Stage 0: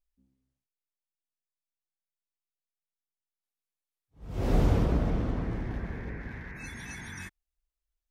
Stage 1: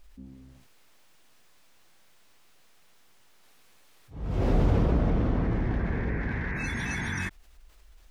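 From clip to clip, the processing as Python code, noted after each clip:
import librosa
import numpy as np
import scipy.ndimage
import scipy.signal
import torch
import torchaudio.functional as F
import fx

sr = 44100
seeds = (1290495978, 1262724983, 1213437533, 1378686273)

y = fx.high_shelf(x, sr, hz=5900.0, db=-12.0)
y = fx.env_flatten(y, sr, amount_pct=50)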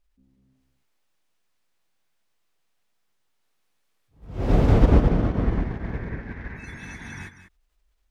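y = x + 10.0 ** (-3.0 / 20.0) * np.pad(x, (int(192 * sr / 1000.0), 0))[:len(x)]
y = fx.upward_expand(y, sr, threshold_db=-35.0, expansion=2.5)
y = F.gain(torch.from_numpy(y), 8.5).numpy()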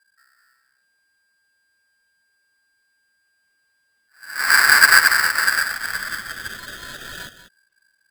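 y = fx.spec_topn(x, sr, count=64)
y = y * np.sign(np.sin(2.0 * np.pi * 1600.0 * np.arange(len(y)) / sr))
y = F.gain(torch.from_numpy(y), 3.0).numpy()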